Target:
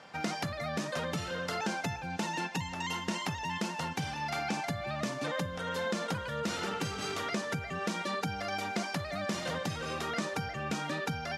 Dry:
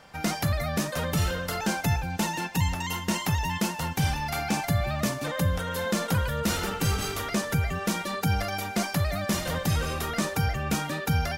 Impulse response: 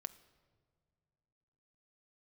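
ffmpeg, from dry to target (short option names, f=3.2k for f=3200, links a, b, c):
-af "acompressor=threshold=-30dB:ratio=4,highpass=160,lowpass=6.5k"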